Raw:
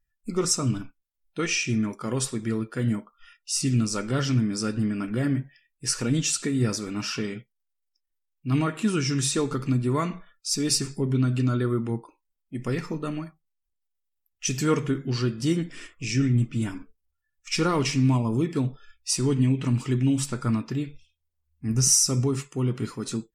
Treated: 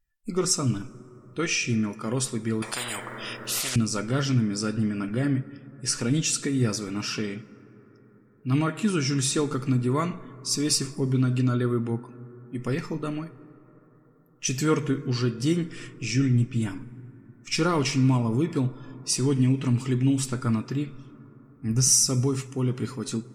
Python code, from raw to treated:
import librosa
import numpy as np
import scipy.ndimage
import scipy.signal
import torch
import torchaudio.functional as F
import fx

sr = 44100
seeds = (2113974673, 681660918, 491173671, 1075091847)

y = fx.lowpass(x, sr, hz=12000.0, slope=12, at=(4.44, 6.09))
y = fx.rev_plate(y, sr, seeds[0], rt60_s=4.9, hf_ratio=0.25, predelay_ms=0, drr_db=17.5)
y = fx.spectral_comp(y, sr, ratio=10.0, at=(2.62, 3.76))